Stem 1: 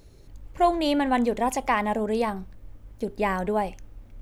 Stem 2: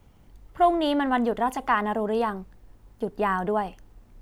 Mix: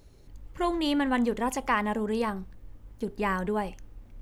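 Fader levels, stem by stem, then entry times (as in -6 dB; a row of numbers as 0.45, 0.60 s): -4.0, -10.0 dB; 0.00, 0.00 s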